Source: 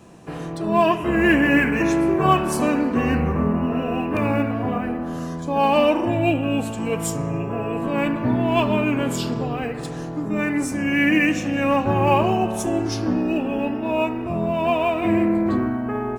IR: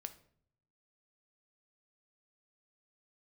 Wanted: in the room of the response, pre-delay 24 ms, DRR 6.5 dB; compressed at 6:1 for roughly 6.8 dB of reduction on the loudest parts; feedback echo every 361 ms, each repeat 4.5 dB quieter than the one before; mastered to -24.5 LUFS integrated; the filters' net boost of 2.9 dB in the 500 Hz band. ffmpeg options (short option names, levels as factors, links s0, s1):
-filter_complex "[0:a]equalizer=f=500:t=o:g=4,acompressor=threshold=0.126:ratio=6,aecho=1:1:361|722|1083|1444|1805|2166|2527|2888|3249:0.596|0.357|0.214|0.129|0.0772|0.0463|0.0278|0.0167|0.01,asplit=2[s0][s1];[1:a]atrim=start_sample=2205,adelay=24[s2];[s1][s2]afir=irnorm=-1:irlink=0,volume=0.75[s3];[s0][s3]amix=inputs=2:normalize=0,volume=0.596"